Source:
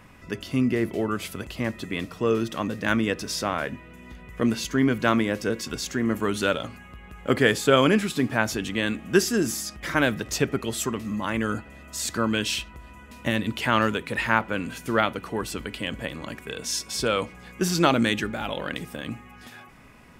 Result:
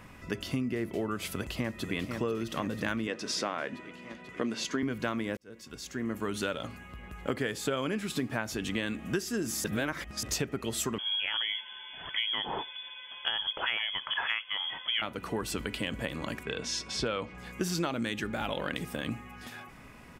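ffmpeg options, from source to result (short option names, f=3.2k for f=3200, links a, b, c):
-filter_complex "[0:a]asplit=2[a][b];[b]afade=t=in:st=1.31:d=0.01,afade=t=out:st=1.94:d=0.01,aecho=0:1:490|980|1470|1960|2450|2940|3430|3920|4410|4900|5390|5880:0.316228|0.252982|0.202386|0.161909|0.129527|0.103622|0.0828972|0.0663178|0.0530542|0.0424434|0.0339547|0.0271638[c];[a][c]amix=inputs=2:normalize=0,asettb=1/sr,asplit=3[d][e][f];[d]atrim=end=3.074[g];[e]atrim=start=3.07:end=4.83,asetpts=PTS-STARTPTS,afade=t=in:d=0.004:c=qsin,afade=t=out:st=1.756:d=0.004:c=qsin,highpass=220,lowpass=7k[h];[f]atrim=start=4.826[i];[g][h]acrossfade=d=0.004:c1=hsin:c2=qsin[j];[j][i]acrossfade=d=0.004:c1=qsin:c2=hsin,asettb=1/sr,asplit=3[k][l][m];[k]atrim=end=10.984[n];[l]atrim=start=10.98:end=15.02,asetpts=PTS-STARTPTS,afade=t=in:d=0.004:c=qsin,afade=t=out:st=4.036:d=0.004:c=qsin,lowpass=f=3k:t=q:w=0.5098,lowpass=f=3k:t=q:w=0.6013,lowpass=f=3k:t=q:w=0.9,lowpass=f=3k:t=q:w=2.563,afreqshift=-3500[o];[m]atrim=start=15.016[p];[n][o]acrossfade=d=0.004:c1=hsin:c2=qsin[q];[q][p]acrossfade=d=0.004:c1=qsin:c2=hsin,asettb=1/sr,asplit=3[r][s][t];[r]atrim=end=16.434[u];[s]atrim=start=16.43:end=17.38,asetpts=PTS-STARTPTS,afade=t=in:d=0.004:c=qsin,afade=t=out:st=0.946:d=0.004:c=qsin,lowpass=4.7k[v];[t]atrim=start=17.376[w];[u][v]acrossfade=d=0.004:c1=hsin:c2=qsin[x];[x][w]acrossfade=d=0.004:c1=qsin:c2=hsin,asplit=4[y][z][aa][ab];[y]atrim=end=5.37,asetpts=PTS-STARTPTS,afade=t=out:st=5.366:d=0.004:c=hsin[ac];[z]atrim=start=5.37:end=9.642,asetpts=PTS-STARTPTS,afade=t=in:d=2.59:c=qsin[ad];[aa]atrim=start=9.638:end=10.232,asetpts=PTS-STARTPTS,areverse[ae];[ab]atrim=start=10.228[af];[ac][ad]concat=n=2:v=0:a=1[ag];[ag][ae]acrossfade=d=0.004:c1=hsin:c2=hsin[ah];[ah][af]acrossfade=d=0.004:c1=hsin:c2=hsin,acompressor=threshold=-28dB:ratio=10"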